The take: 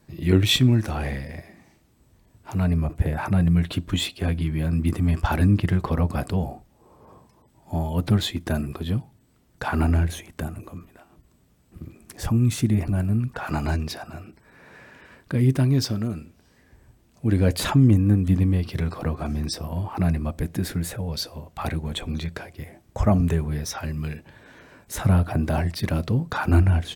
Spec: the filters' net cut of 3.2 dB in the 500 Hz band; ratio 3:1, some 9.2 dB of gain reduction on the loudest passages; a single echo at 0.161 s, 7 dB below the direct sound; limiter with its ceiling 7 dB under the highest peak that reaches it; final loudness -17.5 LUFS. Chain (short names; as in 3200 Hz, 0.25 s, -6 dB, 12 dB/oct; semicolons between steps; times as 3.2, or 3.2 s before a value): bell 500 Hz -4.5 dB; compressor 3:1, threshold -26 dBFS; limiter -22 dBFS; echo 0.161 s -7 dB; gain +14 dB